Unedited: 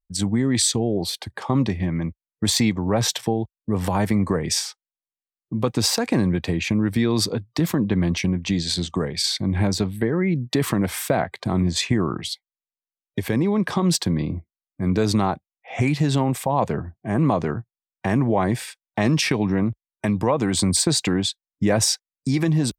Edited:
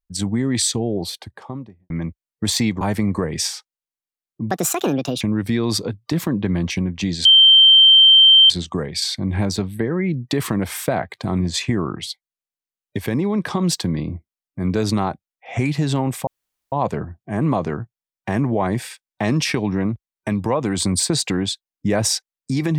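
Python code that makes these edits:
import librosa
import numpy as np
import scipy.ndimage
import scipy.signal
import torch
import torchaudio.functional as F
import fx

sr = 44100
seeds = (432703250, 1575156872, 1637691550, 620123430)

y = fx.studio_fade_out(x, sr, start_s=0.95, length_s=0.95)
y = fx.edit(y, sr, fx.cut(start_s=2.81, length_s=1.12),
    fx.speed_span(start_s=5.63, length_s=1.05, speed=1.5),
    fx.insert_tone(at_s=8.72, length_s=1.25, hz=3130.0, db=-6.5),
    fx.insert_room_tone(at_s=16.49, length_s=0.45), tone=tone)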